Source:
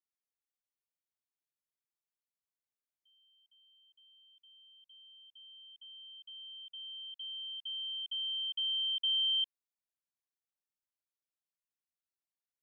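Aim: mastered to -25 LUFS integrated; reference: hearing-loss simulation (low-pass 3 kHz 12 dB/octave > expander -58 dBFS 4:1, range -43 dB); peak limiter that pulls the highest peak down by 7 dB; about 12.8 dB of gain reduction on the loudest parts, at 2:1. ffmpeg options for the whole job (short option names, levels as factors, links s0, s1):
-af "acompressor=threshold=0.002:ratio=2,alimiter=level_in=11.2:limit=0.0631:level=0:latency=1,volume=0.0891,lowpass=3000,agate=range=0.00708:threshold=0.00126:ratio=4,volume=20"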